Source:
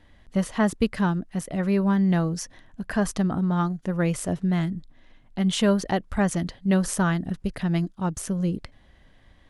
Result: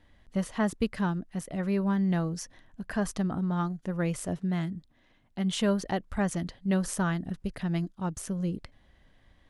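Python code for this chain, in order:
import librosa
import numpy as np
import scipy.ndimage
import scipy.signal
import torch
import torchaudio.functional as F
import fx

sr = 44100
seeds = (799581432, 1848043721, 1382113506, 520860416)

y = fx.highpass(x, sr, hz=64.0, slope=6, at=(4.37, 5.52))
y = y * 10.0 ** (-5.5 / 20.0)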